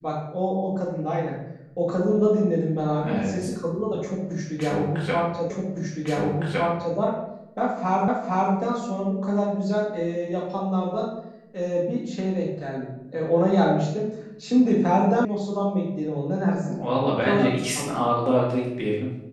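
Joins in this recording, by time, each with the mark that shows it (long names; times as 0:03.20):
0:05.50: the same again, the last 1.46 s
0:08.08: the same again, the last 0.46 s
0:15.25: cut off before it has died away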